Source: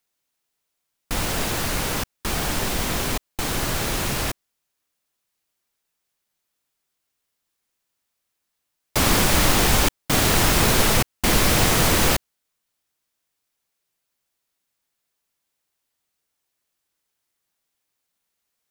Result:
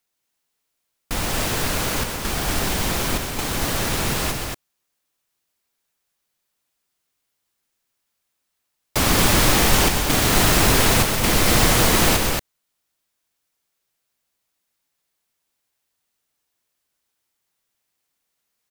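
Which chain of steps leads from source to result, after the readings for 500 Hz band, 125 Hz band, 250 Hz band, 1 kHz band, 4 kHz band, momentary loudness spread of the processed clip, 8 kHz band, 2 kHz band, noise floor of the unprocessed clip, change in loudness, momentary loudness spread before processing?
+2.0 dB, +1.5 dB, +2.0 dB, +2.0 dB, +2.0 dB, 10 LU, +2.0 dB, +2.0 dB, -79 dBFS, +1.5 dB, 10 LU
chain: tapped delay 0.126/0.228 s -8.5/-4 dB

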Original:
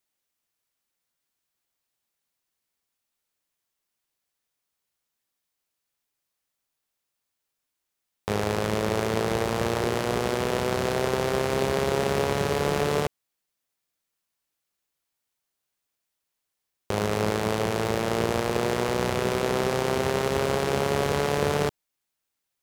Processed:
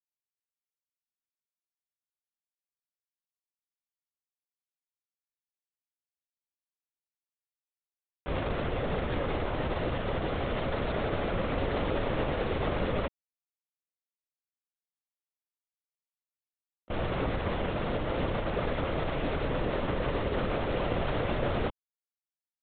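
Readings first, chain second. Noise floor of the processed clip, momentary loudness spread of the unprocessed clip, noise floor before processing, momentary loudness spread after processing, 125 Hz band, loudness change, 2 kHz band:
under -85 dBFS, 2 LU, -83 dBFS, 2 LU, -3.5 dB, -6.0 dB, -6.0 dB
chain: G.711 law mismatch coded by A; LPC vocoder at 8 kHz whisper; gain -4 dB

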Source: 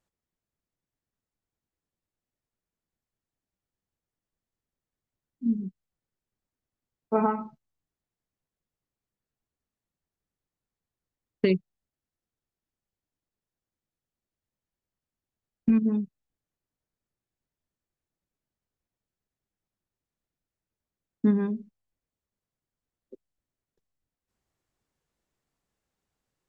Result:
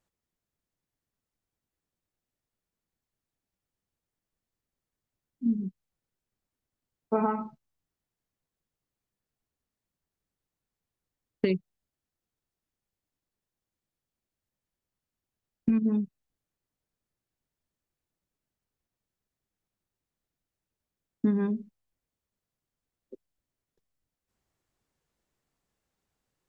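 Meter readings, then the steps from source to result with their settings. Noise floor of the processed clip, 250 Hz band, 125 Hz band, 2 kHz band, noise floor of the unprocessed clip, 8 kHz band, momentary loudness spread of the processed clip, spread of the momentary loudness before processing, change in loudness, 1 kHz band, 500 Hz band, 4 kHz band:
under -85 dBFS, -2.0 dB, -2.0 dB, -3.0 dB, under -85 dBFS, n/a, 10 LU, 13 LU, -2.5 dB, -2.5 dB, -2.5 dB, -4.0 dB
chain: compressor, threshold -22 dBFS, peak gain reduction 5.5 dB; gain +1 dB

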